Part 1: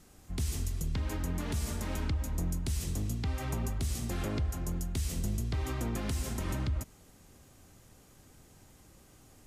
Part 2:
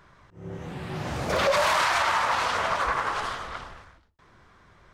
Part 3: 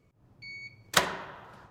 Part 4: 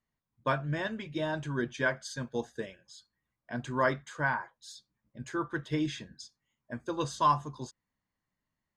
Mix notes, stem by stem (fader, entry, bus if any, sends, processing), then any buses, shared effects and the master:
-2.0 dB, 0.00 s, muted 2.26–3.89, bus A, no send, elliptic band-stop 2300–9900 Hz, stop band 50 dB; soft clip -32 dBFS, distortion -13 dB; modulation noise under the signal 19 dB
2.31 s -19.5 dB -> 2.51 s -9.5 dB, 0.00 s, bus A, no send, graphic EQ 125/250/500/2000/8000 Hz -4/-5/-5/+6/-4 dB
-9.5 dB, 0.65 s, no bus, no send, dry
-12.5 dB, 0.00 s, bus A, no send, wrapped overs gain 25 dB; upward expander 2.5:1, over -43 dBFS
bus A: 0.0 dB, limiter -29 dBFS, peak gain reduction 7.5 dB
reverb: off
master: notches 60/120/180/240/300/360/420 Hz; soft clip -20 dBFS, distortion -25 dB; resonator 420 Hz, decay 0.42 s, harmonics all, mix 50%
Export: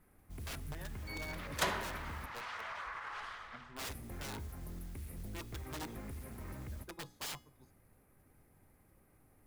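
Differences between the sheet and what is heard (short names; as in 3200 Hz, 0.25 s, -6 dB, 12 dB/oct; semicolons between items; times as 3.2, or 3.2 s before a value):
stem 3 -9.5 dB -> +2.5 dB; stem 4 -12.5 dB -> -3.5 dB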